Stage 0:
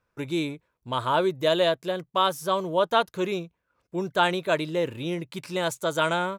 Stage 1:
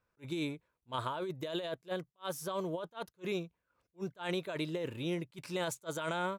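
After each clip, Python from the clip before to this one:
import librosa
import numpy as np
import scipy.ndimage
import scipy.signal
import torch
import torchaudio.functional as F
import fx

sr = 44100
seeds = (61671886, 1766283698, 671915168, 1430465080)

y = fx.over_compress(x, sr, threshold_db=-27.0, ratio=-1.0)
y = fx.attack_slew(y, sr, db_per_s=440.0)
y = y * librosa.db_to_amplitude(-8.5)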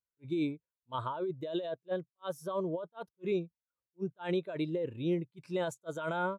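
y = fx.spectral_expand(x, sr, expansion=1.5)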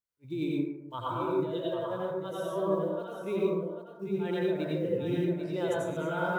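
y = fx.block_float(x, sr, bits=7)
y = y + 10.0 ** (-8.0 / 20.0) * np.pad(y, (int(792 * sr / 1000.0), 0))[:len(y)]
y = fx.rev_plate(y, sr, seeds[0], rt60_s=0.94, hf_ratio=0.35, predelay_ms=75, drr_db=-5.0)
y = y * librosa.db_to_amplitude(-2.5)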